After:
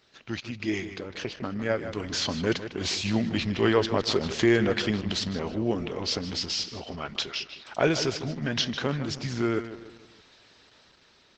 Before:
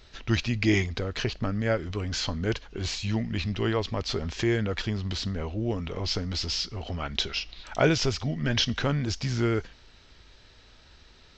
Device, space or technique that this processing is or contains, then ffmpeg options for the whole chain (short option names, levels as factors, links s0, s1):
video call: -filter_complex "[0:a]highpass=160,asplit=2[s0][s1];[s1]adelay=154,lowpass=f=4600:p=1,volume=0.282,asplit=2[s2][s3];[s3]adelay=154,lowpass=f=4600:p=1,volume=0.41,asplit=2[s4][s5];[s5]adelay=154,lowpass=f=4600:p=1,volume=0.41,asplit=2[s6][s7];[s7]adelay=154,lowpass=f=4600:p=1,volume=0.41[s8];[s0][s2][s4][s6][s8]amix=inputs=5:normalize=0,dynaudnorm=f=410:g=9:m=5.96,volume=0.531" -ar 48000 -c:a libopus -b:a 12k